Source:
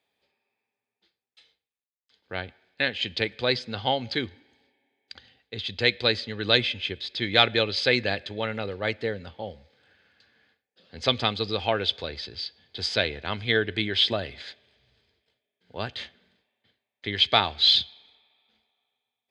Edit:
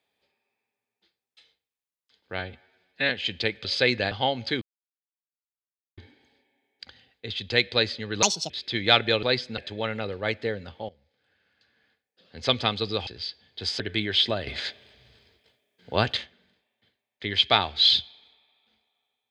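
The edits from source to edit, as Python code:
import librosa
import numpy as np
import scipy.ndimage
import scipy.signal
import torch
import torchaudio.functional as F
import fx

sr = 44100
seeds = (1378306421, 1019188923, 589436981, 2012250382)

y = fx.edit(x, sr, fx.stretch_span(start_s=2.39, length_s=0.47, factor=1.5),
    fx.swap(start_s=3.41, length_s=0.35, other_s=7.7, other_length_s=0.47),
    fx.insert_silence(at_s=4.26, length_s=1.36),
    fx.speed_span(start_s=6.51, length_s=0.46, speed=1.68),
    fx.fade_in_from(start_s=9.48, length_s=1.52, floor_db=-17.0),
    fx.cut(start_s=11.66, length_s=0.58),
    fx.cut(start_s=12.97, length_s=0.65),
    fx.clip_gain(start_s=14.29, length_s=1.7, db=9.0), tone=tone)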